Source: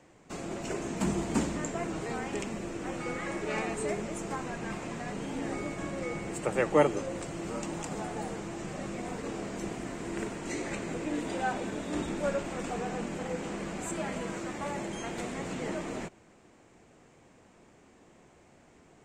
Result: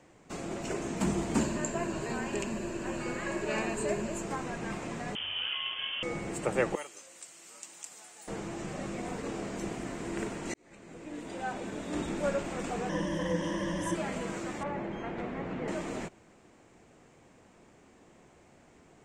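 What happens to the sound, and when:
0:01.39–0:04.23: EQ curve with evenly spaced ripples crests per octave 1.4, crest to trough 8 dB
0:05.15–0:06.03: voice inversion scrambler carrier 3,300 Hz
0:06.75–0:08.28: first difference
0:10.54–0:12.17: fade in
0:12.89–0:13.95: EQ curve with evenly spaced ripples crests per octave 1.2, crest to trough 18 dB
0:14.63–0:15.68: low-pass filter 2,100 Hz

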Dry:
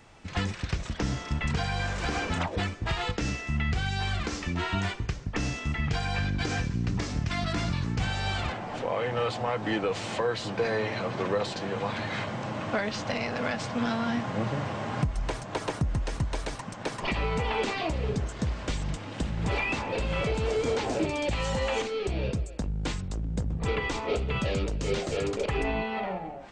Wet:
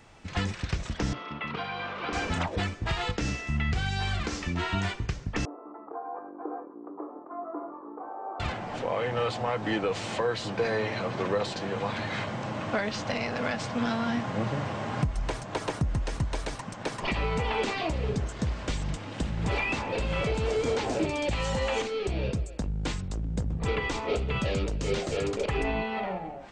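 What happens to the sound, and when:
0:01.13–0:02.13: loudspeaker in its box 260–3,500 Hz, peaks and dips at 740 Hz −3 dB, 1,200 Hz +7 dB, 1,700 Hz −7 dB
0:05.45–0:08.40: Chebyshev band-pass filter 300–1,200 Hz, order 4

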